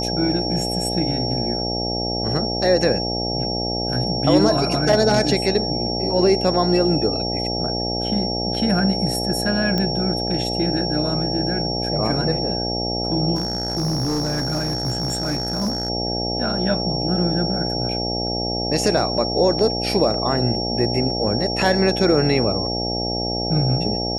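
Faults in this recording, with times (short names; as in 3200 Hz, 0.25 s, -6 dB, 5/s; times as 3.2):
buzz 60 Hz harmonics 14 -26 dBFS
tone 5500 Hz -25 dBFS
9.78 pop -10 dBFS
13.35–15.9 clipped -18.5 dBFS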